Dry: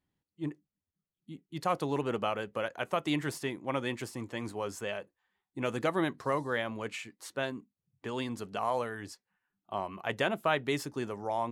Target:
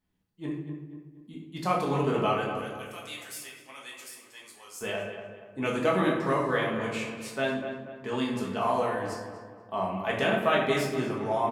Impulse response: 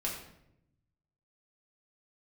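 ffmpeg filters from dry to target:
-filter_complex "[0:a]asettb=1/sr,asplit=3[a][b][c];[a]atrim=end=2.574[d];[b]atrim=start=2.57:end=4.81,asetpts=PTS-STARTPTS,afade=t=in:d=0.004:c=qsin,afade=t=out:st=2.236:d=0.004:c=qsin,aderivative[e];[c]atrim=start=4.806[f];[d][e]acrossfade=d=0.004:c1=hsin:c2=qsin[g];[g][f]acrossfade=d=0.004:c1=qsin:c2=hsin,asplit=2[h][i];[i]adelay=239,lowpass=f=2.2k:p=1,volume=-8.5dB,asplit=2[j][k];[k]adelay=239,lowpass=f=2.2k:p=1,volume=0.45,asplit=2[l][m];[m]adelay=239,lowpass=f=2.2k:p=1,volume=0.45,asplit=2[n][o];[o]adelay=239,lowpass=f=2.2k:p=1,volume=0.45,asplit=2[p][q];[q]adelay=239,lowpass=f=2.2k:p=1,volume=0.45[r];[h][j][l][n][p][r]amix=inputs=6:normalize=0[s];[1:a]atrim=start_sample=2205[t];[s][t]afir=irnorm=-1:irlink=0,volume=1.5dB"

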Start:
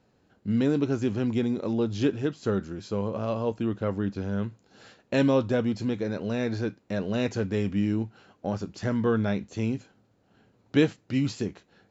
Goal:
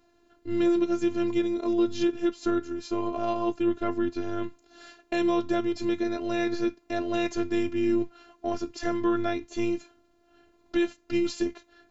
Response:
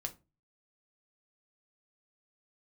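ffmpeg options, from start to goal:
-af "afftfilt=real='hypot(re,im)*cos(PI*b)':imag='0':win_size=512:overlap=0.75,alimiter=limit=-20.5dB:level=0:latency=1:release=319,volume=6.5dB"

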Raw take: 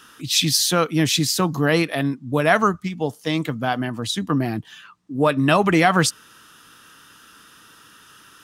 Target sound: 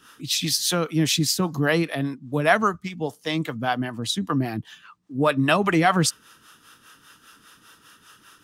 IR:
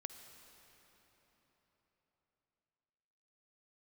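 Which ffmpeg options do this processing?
-filter_complex "[0:a]acrossover=split=410[a][b];[a]aeval=exprs='val(0)*(1-0.7/2+0.7/2*cos(2*PI*5*n/s))':c=same[c];[b]aeval=exprs='val(0)*(1-0.7/2-0.7/2*cos(2*PI*5*n/s))':c=same[d];[c][d]amix=inputs=2:normalize=0"

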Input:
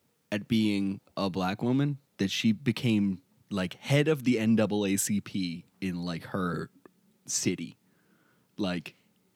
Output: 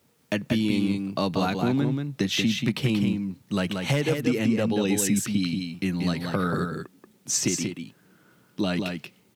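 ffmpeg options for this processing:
-af "aeval=exprs='0.178*(abs(mod(val(0)/0.178+3,4)-2)-1)':c=same,acompressor=threshold=-27dB:ratio=6,aecho=1:1:183:0.562,volume=6.5dB"

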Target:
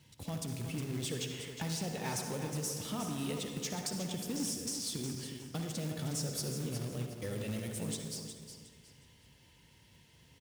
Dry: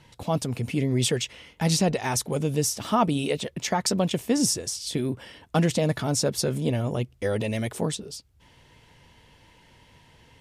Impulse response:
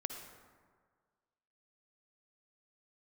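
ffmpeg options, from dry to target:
-filter_complex "[0:a]asetnsamples=n=441:p=0,asendcmd='0.89 equalizer g -3.5;2.47 equalizer g -13.5',equalizer=f=930:w=0.37:g=-14,acompressor=threshold=-31dB:ratio=10,lowshelf=f=100:g=-7[a];[1:a]atrim=start_sample=2205,afade=t=out:st=0.38:d=0.01,atrim=end_sample=17199[b];[a][b]afir=irnorm=-1:irlink=0,asoftclip=type=tanh:threshold=-28.5dB,highpass=f=45:w=0.5412,highpass=f=45:w=1.3066,acrusher=bits=3:mode=log:mix=0:aa=0.000001,aecho=1:1:363|726|1089:0.355|0.0993|0.0278"

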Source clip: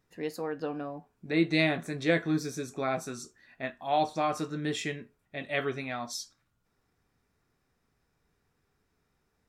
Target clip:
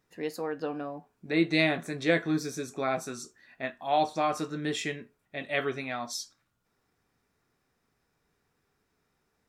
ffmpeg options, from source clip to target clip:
-af "lowshelf=f=120:g=-8,volume=1.5dB"

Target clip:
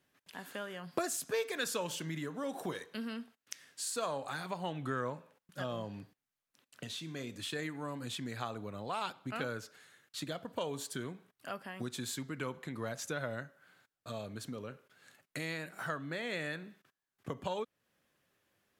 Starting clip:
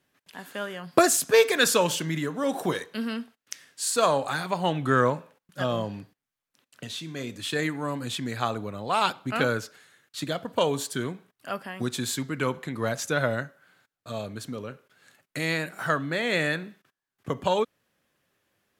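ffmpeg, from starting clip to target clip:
-af "acompressor=threshold=-38dB:ratio=2,volume=-3.5dB"

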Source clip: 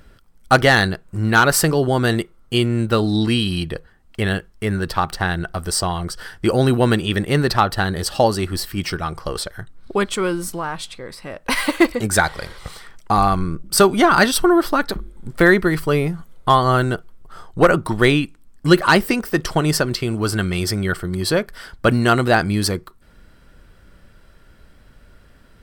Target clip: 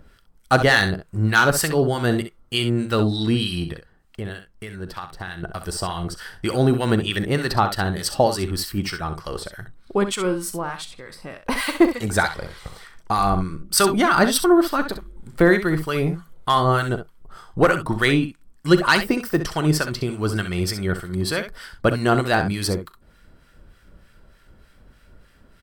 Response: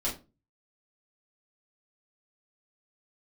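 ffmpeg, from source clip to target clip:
-filter_complex "[0:a]asettb=1/sr,asplit=3[a][b][c];[a]atrim=end=3.724[d];[b]atrim=start=3.72:end=5.43,asetpts=PTS-STARTPTS,afade=t=in:d=0.004:c=qsin,afade=t=out:st=1.706:d=0.004:c=qsin,acompressor=threshold=-33dB:ratio=2[e];[c]atrim=start=5.426[f];[d][e]acrossfade=d=0.004:c1=hsin:c2=qsin[g];[g][f]acrossfade=d=0.004:c1=qsin:c2=hsin,acrossover=split=1100[h][i];[h]aeval=exprs='val(0)*(1-0.7/2+0.7/2*cos(2*PI*3.3*n/s))':c=same[j];[i]aeval=exprs='val(0)*(1-0.7/2-0.7/2*cos(2*PI*3.3*n/s))':c=same[k];[j][k]amix=inputs=2:normalize=0,asplit=2[l][m];[m]aecho=0:1:39|65:0.126|0.316[n];[l][n]amix=inputs=2:normalize=0"

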